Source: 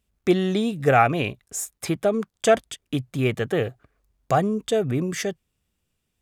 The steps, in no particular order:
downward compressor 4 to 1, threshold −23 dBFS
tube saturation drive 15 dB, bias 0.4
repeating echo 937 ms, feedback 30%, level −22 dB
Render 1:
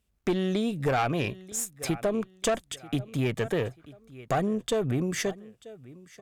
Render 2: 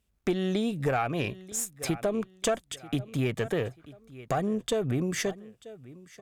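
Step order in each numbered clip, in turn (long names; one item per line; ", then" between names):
repeating echo, then tube saturation, then downward compressor
repeating echo, then downward compressor, then tube saturation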